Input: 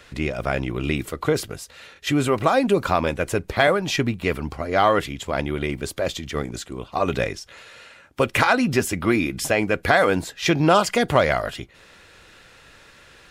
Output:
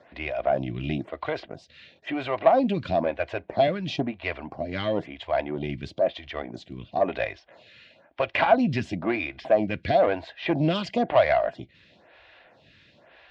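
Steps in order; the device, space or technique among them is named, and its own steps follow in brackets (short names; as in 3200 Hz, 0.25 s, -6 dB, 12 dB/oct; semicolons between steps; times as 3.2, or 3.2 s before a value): vibe pedal into a guitar amplifier (photocell phaser 1 Hz; tube stage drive 12 dB, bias 0.35; speaker cabinet 75–4000 Hz, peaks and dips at 440 Hz -7 dB, 660 Hz +10 dB, 1300 Hz -9 dB)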